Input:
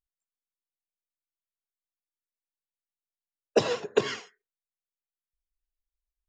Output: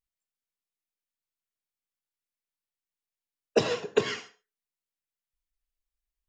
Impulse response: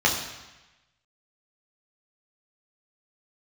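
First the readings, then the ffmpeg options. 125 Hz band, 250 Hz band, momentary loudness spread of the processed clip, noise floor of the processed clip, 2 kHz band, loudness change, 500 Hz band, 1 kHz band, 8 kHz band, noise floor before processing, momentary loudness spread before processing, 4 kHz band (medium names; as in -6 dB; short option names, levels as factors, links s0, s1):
+1.0 dB, 0.0 dB, 8 LU, under -85 dBFS, +0.5 dB, -1.0 dB, -0.5 dB, -1.5 dB, -0.5 dB, under -85 dBFS, 9 LU, +0.5 dB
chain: -filter_complex "[0:a]asplit=2[s0][s1];[1:a]atrim=start_sample=2205,atrim=end_sample=6615[s2];[s1][s2]afir=irnorm=-1:irlink=0,volume=0.0531[s3];[s0][s3]amix=inputs=2:normalize=0"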